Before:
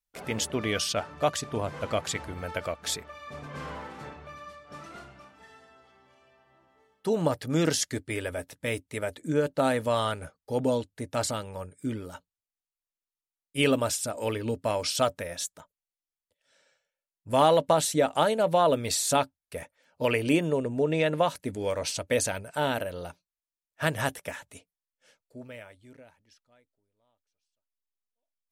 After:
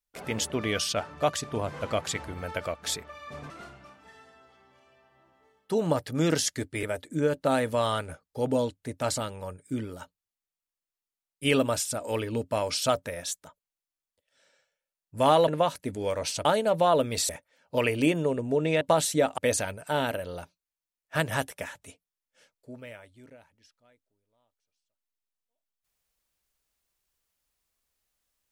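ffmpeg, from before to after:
-filter_complex "[0:a]asplit=8[s0][s1][s2][s3][s4][s5][s6][s7];[s0]atrim=end=3.502[s8];[s1]atrim=start=4.848:end=8.182[s9];[s2]atrim=start=8.958:end=17.612[s10];[s3]atrim=start=21.078:end=22.052[s11];[s4]atrim=start=18.178:end=19.022[s12];[s5]atrim=start=19.558:end=21.082[s13];[s6]atrim=start=17.608:end=18.182[s14];[s7]atrim=start=22.048[s15];[s8][s9]acrossfade=d=0.004:c1=hsin:c2=hsin[s16];[s16][s10]acrossfade=d=0.004:c1=hsin:c2=hsin[s17];[s17][s11]acrossfade=d=0.004:c1=hsin:c2=hsin[s18];[s18][s12]acrossfade=d=0.004:c1=hsin:c2=hsin[s19];[s19][s13]acrossfade=d=0.004:c1=hsin:c2=hsin[s20];[s20][s14]acrossfade=d=0.004:c1=hsin:c2=hsin[s21];[s21][s15]acrossfade=d=0.004:c1=hsin:c2=hsin"

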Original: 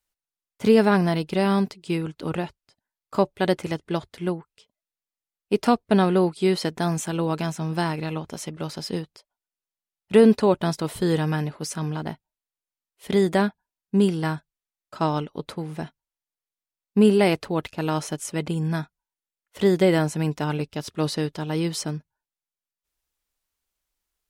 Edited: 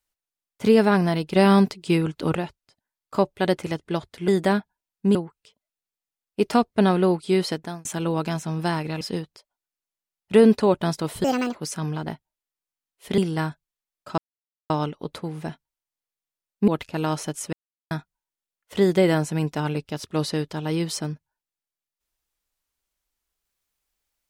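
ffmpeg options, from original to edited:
-filter_complex "[0:a]asplit=14[s0][s1][s2][s3][s4][s5][s6][s7][s8][s9][s10][s11][s12][s13];[s0]atrim=end=1.362[s14];[s1]atrim=start=1.358:end=2.352,asetpts=PTS-STARTPTS,volume=1.78[s15];[s2]atrim=start=2.348:end=4.282[s16];[s3]atrim=start=13.168:end=14.042[s17];[s4]atrim=start=4.278:end=6.98,asetpts=PTS-STARTPTS,afade=t=out:st=2.322:d=0.38[s18];[s5]atrim=start=6.98:end=8.142,asetpts=PTS-STARTPTS,afade=t=in:d=0.004:c=hsin[s19];[s6]atrim=start=8.808:end=11.044[s20];[s7]atrim=start=11.04:end=11.54,asetpts=PTS-STARTPTS,asetrate=71442,aresample=44100,atrim=end_sample=13611,asetpts=PTS-STARTPTS[s21];[s8]atrim=start=11.536:end=13.172[s22];[s9]atrim=start=14.038:end=15.04,asetpts=PTS-STARTPTS,afade=t=out:st=0.998:d=0.004:c=hsin,apad=pad_dur=0.52[s23];[s10]atrim=start=15.04:end=17.022,asetpts=PTS-STARTPTS,afade=t=in:d=0.004:c=hsin[s24];[s11]atrim=start=17.518:end=18.37,asetpts=PTS-STARTPTS,afade=t=out:st=0.848:d=0.004:c=hsin[s25];[s12]atrim=start=18.37:end=18.75,asetpts=PTS-STARTPTS,volume=0[s26];[s13]atrim=start=18.75,asetpts=PTS-STARTPTS,afade=t=in:d=0.004:c=hsin[s27];[s14][s15]acrossfade=d=0.004:c1=hsin:c2=hsin[s28];[s28][s16]acrossfade=d=0.004:c1=hsin:c2=hsin[s29];[s29][s17]acrossfade=d=0.004:c1=hsin:c2=hsin[s30];[s18][s19]concat=n=2:v=0:a=1[s31];[s30][s31]acrossfade=d=0.004:c1=hsin:c2=hsin[s32];[s32][s20]acrossfade=d=0.004:c1=hsin:c2=hsin[s33];[s33][s21]acrossfade=d=0.004:c1=hsin:c2=hsin[s34];[s34][s22]acrossfade=d=0.004:c1=hsin:c2=hsin[s35];[s23][s24]concat=n=2:v=0:a=1[s36];[s35][s36]acrossfade=d=0.004:c1=hsin:c2=hsin[s37];[s25][s26][s27]concat=n=3:v=0:a=1[s38];[s37][s38]acrossfade=d=0.004:c1=hsin:c2=hsin"

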